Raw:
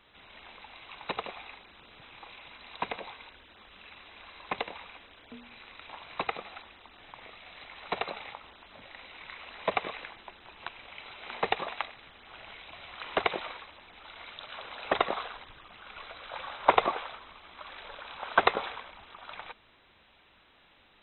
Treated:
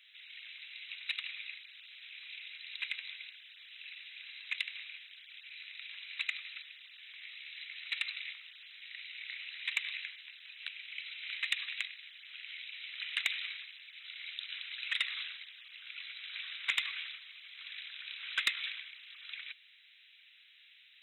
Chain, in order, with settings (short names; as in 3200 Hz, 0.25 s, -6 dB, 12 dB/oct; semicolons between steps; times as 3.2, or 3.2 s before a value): steep high-pass 2000 Hz 36 dB/oct; soft clip -23.5 dBFS, distortion -13 dB; gain +4.5 dB